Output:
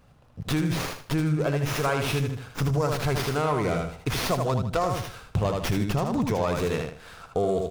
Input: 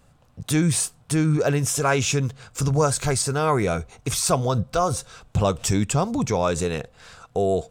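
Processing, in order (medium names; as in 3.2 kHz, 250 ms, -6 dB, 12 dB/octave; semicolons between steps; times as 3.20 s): feedback delay 78 ms, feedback 28%, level -5 dB; compression, threshold -21 dBFS, peak gain reduction 7.5 dB; sliding maximum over 5 samples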